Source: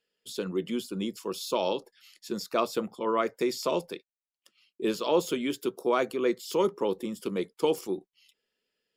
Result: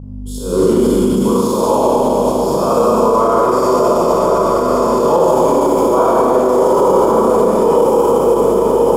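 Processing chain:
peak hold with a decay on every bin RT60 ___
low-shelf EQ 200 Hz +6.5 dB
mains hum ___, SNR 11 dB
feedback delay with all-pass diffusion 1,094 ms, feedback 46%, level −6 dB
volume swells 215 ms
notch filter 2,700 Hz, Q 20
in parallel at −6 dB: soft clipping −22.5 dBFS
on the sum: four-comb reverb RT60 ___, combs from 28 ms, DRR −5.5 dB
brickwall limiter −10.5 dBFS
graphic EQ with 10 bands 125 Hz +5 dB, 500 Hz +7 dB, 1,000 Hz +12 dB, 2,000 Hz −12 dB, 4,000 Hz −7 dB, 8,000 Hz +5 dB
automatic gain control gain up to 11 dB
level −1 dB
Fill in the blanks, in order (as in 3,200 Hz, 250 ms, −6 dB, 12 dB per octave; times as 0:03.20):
2.20 s, 50 Hz, 3.5 s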